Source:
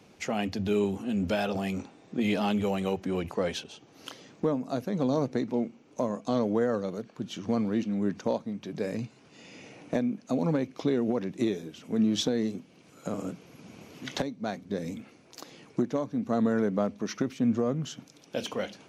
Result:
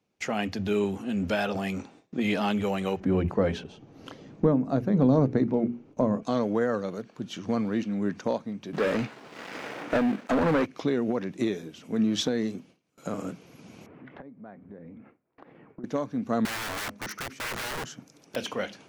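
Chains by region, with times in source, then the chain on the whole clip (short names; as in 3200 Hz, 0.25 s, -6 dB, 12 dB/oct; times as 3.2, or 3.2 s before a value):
3–6.23 tilt -3.5 dB/oct + notches 60/120/180/240/300/360/420 Hz
8.73–10.66 switching dead time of 0.2 ms + overdrive pedal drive 23 dB, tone 1700 Hz, clips at -16 dBFS
13.86–15.84 LPF 1900 Hz 24 dB/oct + compressor 3:1, threshold -45 dBFS
16.45–18.36 bell 3400 Hz -7 dB 0.9 oct + wrapped overs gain 30.5 dB
whole clip: gate with hold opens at -43 dBFS; dynamic EQ 1600 Hz, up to +5 dB, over -48 dBFS, Q 1.1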